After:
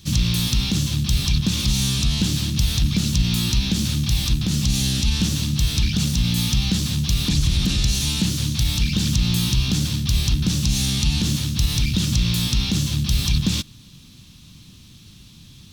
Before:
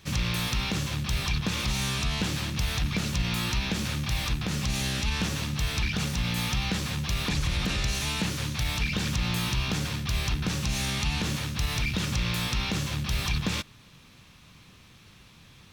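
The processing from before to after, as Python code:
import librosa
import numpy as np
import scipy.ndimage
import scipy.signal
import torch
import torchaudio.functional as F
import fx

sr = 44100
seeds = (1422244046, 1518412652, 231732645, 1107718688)

y = fx.band_shelf(x, sr, hz=1000.0, db=-13.5, octaves=2.9)
y = y * librosa.db_to_amplitude(9.0)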